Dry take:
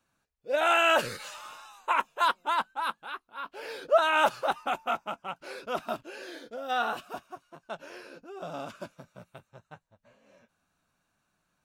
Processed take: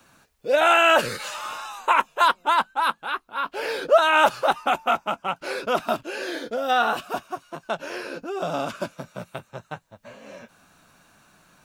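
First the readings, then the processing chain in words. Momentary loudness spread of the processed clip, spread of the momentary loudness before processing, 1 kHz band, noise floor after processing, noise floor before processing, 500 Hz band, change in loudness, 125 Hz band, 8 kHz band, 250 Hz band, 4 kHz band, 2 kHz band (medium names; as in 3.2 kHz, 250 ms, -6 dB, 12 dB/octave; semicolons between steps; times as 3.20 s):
19 LU, 20 LU, +7.5 dB, -63 dBFS, -78 dBFS, +7.0 dB, +6.0 dB, +9.5 dB, +7.0 dB, +9.0 dB, +7.0 dB, +7.0 dB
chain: three bands compressed up and down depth 40%; trim +8 dB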